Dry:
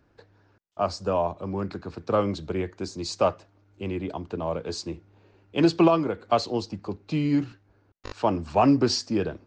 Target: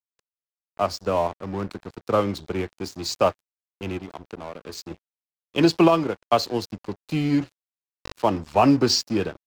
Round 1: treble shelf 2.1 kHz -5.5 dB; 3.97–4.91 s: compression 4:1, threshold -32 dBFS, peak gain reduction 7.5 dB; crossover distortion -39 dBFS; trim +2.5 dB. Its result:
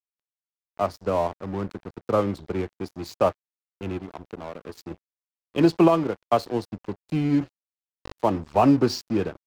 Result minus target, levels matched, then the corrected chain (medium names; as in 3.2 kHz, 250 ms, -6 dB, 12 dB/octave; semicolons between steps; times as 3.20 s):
4 kHz band -9.0 dB
treble shelf 2.1 kHz +5 dB; 3.97–4.91 s: compression 4:1, threshold -32 dBFS, peak gain reduction 8 dB; crossover distortion -39 dBFS; trim +2.5 dB